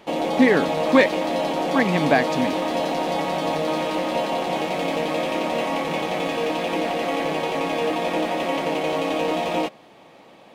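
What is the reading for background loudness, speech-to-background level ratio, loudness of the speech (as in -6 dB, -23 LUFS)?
-24.0 LUFS, 3.0 dB, -21.0 LUFS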